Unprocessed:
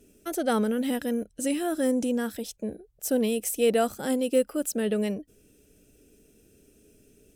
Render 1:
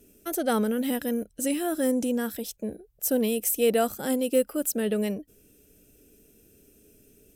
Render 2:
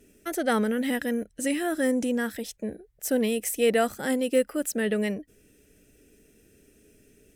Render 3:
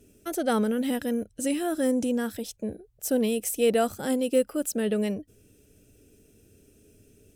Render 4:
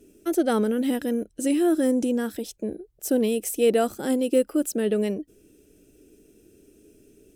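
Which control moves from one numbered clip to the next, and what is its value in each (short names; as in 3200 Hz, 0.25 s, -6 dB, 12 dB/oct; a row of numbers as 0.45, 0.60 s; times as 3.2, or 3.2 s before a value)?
bell, frequency: 14000, 1900, 100, 340 Hz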